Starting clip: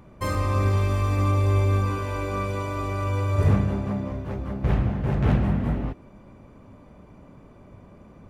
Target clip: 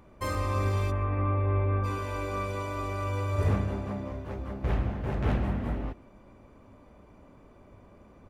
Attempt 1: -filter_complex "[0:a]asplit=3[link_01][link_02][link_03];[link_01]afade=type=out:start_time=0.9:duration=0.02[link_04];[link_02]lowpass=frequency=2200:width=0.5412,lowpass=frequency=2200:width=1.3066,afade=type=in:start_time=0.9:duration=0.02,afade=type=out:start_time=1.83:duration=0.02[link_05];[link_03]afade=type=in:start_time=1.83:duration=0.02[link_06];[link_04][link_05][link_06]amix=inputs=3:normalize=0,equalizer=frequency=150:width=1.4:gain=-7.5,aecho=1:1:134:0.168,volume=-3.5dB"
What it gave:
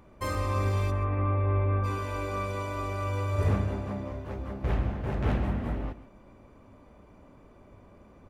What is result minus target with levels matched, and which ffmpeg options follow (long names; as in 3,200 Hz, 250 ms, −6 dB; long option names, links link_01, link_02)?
echo-to-direct +9 dB
-filter_complex "[0:a]asplit=3[link_01][link_02][link_03];[link_01]afade=type=out:start_time=0.9:duration=0.02[link_04];[link_02]lowpass=frequency=2200:width=0.5412,lowpass=frequency=2200:width=1.3066,afade=type=in:start_time=0.9:duration=0.02,afade=type=out:start_time=1.83:duration=0.02[link_05];[link_03]afade=type=in:start_time=1.83:duration=0.02[link_06];[link_04][link_05][link_06]amix=inputs=3:normalize=0,equalizer=frequency=150:width=1.4:gain=-7.5,aecho=1:1:134:0.0596,volume=-3.5dB"